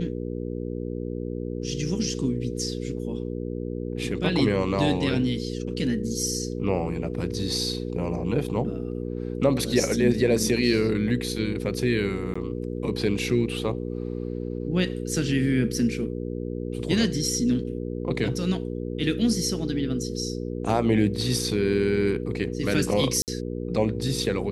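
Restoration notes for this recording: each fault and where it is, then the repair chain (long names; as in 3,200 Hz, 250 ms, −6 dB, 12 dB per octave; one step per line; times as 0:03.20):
mains hum 60 Hz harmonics 8 −31 dBFS
0:12.34–0:12.36: drop-out 15 ms
0:23.22–0:23.28: drop-out 58 ms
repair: hum removal 60 Hz, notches 8
repair the gap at 0:12.34, 15 ms
repair the gap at 0:23.22, 58 ms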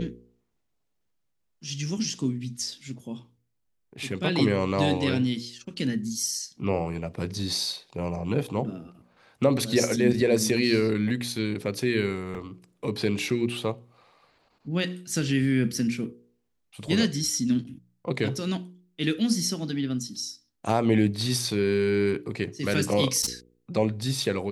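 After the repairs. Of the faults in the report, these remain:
none of them is left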